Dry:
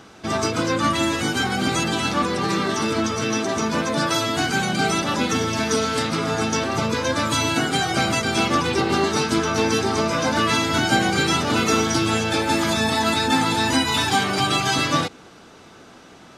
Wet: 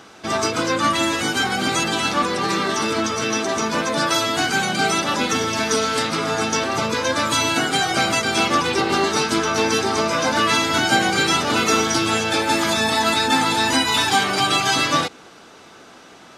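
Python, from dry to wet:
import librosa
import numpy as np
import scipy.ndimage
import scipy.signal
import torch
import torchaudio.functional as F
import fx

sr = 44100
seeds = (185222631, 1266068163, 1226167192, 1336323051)

y = fx.low_shelf(x, sr, hz=240.0, db=-9.5)
y = y * 10.0 ** (3.0 / 20.0)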